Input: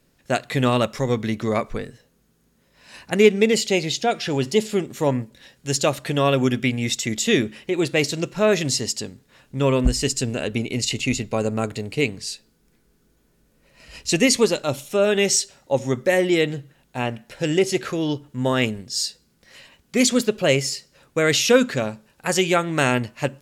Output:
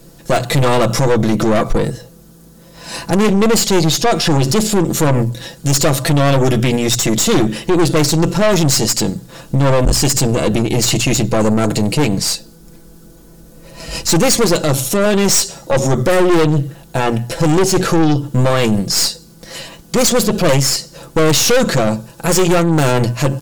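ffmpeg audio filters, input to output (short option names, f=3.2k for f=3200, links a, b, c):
-af "equalizer=f=2.2k:t=o:w=1.5:g=-10.5,bandreject=f=60:t=h:w=6,bandreject=f=120:t=h:w=6,bandreject=f=180:t=h:w=6,aecho=1:1:6:0.61,aeval=exprs='(tanh(17.8*val(0)+0.65)-tanh(0.65))/17.8':c=same,alimiter=level_in=29dB:limit=-1dB:release=50:level=0:latency=1,volume=-5dB"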